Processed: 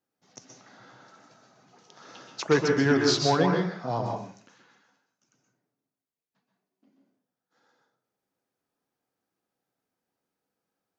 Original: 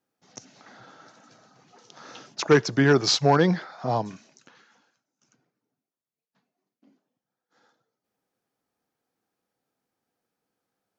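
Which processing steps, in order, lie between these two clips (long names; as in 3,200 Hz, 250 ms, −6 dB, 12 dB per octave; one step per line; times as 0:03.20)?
flanger 0.75 Hz, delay 1.9 ms, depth 9.8 ms, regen −87%
on a send: convolution reverb RT60 0.50 s, pre-delay 117 ms, DRR 2 dB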